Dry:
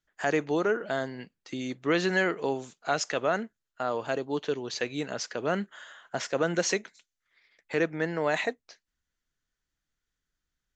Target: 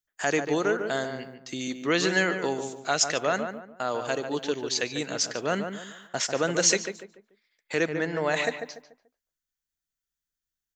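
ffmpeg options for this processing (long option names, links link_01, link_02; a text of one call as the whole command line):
ffmpeg -i in.wav -filter_complex "[0:a]aemphasis=mode=production:type=75kf,agate=range=-12dB:threshold=-52dB:ratio=16:detection=peak,asettb=1/sr,asplit=3[link_01][link_02][link_03];[link_01]atrim=end=7.864[link_04];[link_02]atrim=start=7.86:end=8.44,asetpts=PTS-STARTPTS,afade=type=in:duration=0.004:curve=qsin,afade=type=out:start_time=0.576:duration=0.004:curve=qsin,highshelf=frequency=6500:gain=-11[link_05];[link_03]atrim=start=8.436[link_06];[link_04][link_05]acrossfade=duration=0.004:curve1=hsin:curve2=qsin[link_07];[link_07][link_06]acrossfade=duration=0.004:curve1=qsin:curve2=hsin,asplit=2[link_08][link_09];[link_09]adelay=145,lowpass=frequency=1600:poles=1,volume=-6.5dB,asplit=2[link_10][link_11];[link_11]adelay=145,lowpass=frequency=1600:poles=1,volume=0.35,asplit=2[link_12][link_13];[link_13]adelay=145,lowpass=frequency=1600:poles=1,volume=0.35,asplit=2[link_14][link_15];[link_15]adelay=145,lowpass=frequency=1600:poles=1,volume=0.35[link_16];[link_08][link_10][link_12][link_14][link_16]amix=inputs=5:normalize=0" out.wav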